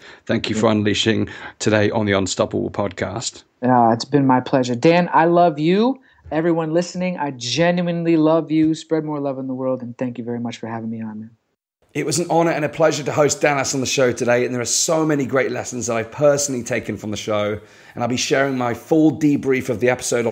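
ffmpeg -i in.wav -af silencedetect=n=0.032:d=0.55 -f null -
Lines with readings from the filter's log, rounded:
silence_start: 11.25
silence_end: 11.95 | silence_duration: 0.70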